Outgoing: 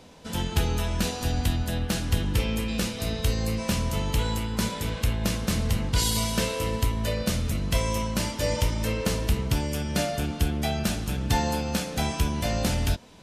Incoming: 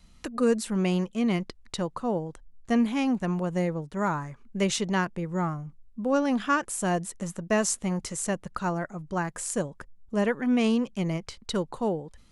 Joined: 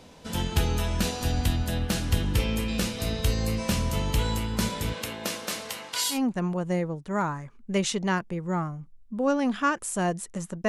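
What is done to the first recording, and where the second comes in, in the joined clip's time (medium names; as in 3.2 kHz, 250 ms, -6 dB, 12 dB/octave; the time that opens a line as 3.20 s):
outgoing
4.92–6.19 s: high-pass 220 Hz -> 1.1 kHz
6.14 s: go over to incoming from 3.00 s, crossfade 0.10 s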